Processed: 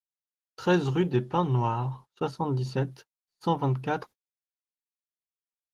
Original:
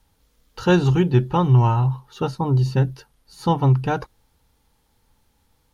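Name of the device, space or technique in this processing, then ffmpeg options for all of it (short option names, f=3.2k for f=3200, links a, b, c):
video call: -af "highpass=180,dynaudnorm=f=240:g=3:m=3dB,agate=range=-36dB:threshold=-37dB:ratio=16:detection=peak,volume=-7.5dB" -ar 48000 -c:a libopus -b:a 16k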